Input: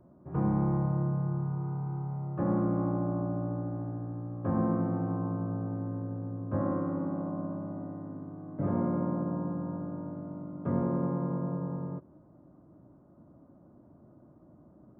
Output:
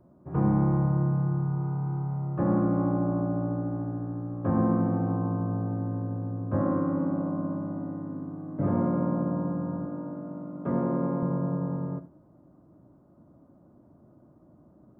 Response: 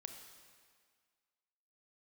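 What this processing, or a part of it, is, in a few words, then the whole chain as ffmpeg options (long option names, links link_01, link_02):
keyed gated reverb: -filter_complex "[0:a]asettb=1/sr,asplit=3[link_01][link_02][link_03];[link_01]atrim=end=9.854[link_04];[link_02]atrim=start=9.85:end=11.23,asetpts=PTS-STARTPTS,afade=type=in:duration=0.004:curve=qsin,afade=type=out:start_time=1.376:duration=0.004:curve=qsin,highpass=170[link_05];[link_03]atrim=start=11.226[link_06];[link_04][link_05]acrossfade=duration=0.004:curve1=hsin:curve2=qsin[link_07];[link_07][link_06]acrossfade=duration=0.004:curve1=qsin:curve2=hsin,asplit=3[link_08][link_09][link_10];[1:a]atrim=start_sample=2205[link_11];[link_09][link_11]afir=irnorm=-1:irlink=0[link_12];[link_10]apad=whole_len=661405[link_13];[link_12][link_13]sidechaingate=range=-33dB:threshold=-46dB:ratio=16:detection=peak,volume=0.5dB[link_14];[link_08][link_14]amix=inputs=2:normalize=0"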